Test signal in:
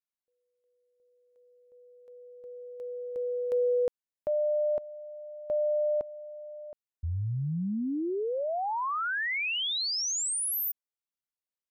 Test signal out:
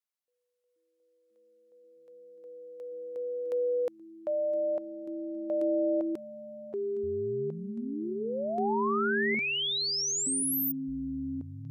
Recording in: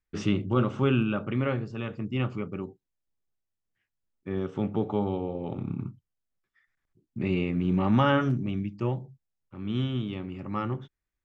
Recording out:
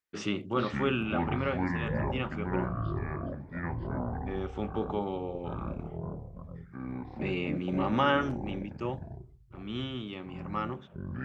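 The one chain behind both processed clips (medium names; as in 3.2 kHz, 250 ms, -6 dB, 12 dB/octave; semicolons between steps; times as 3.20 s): high-pass 450 Hz 6 dB/octave; ever faster or slower copies 341 ms, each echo -7 st, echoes 3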